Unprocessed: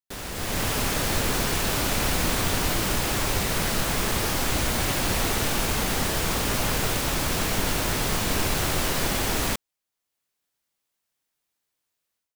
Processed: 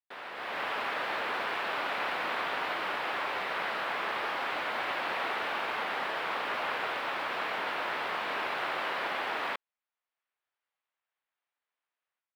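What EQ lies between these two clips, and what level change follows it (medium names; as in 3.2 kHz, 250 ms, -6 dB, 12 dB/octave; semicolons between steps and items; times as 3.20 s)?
high-pass 810 Hz 12 dB/octave; distance through air 460 m; treble shelf 5.7 kHz -4.5 dB; +2.5 dB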